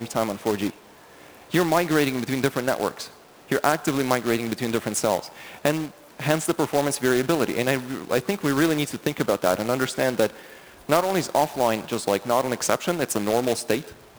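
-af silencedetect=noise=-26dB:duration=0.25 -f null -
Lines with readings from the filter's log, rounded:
silence_start: 0.70
silence_end: 1.54 | silence_duration: 0.84
silence_start: 3.04
silence_end: 3.52 | silence_duration: 0.48
silence_start: 5.19
silence_end: 5.65 | silence_duration: 0.46
silence_start: 5.86
silence_end: 6.20 | silence_duration: 0.34
silence_start: 10.27
silence_end: 10.89 | silence_duration: 0.63
silence_start: 13.80
silence_end: 14.18 | silence_duration: 0.38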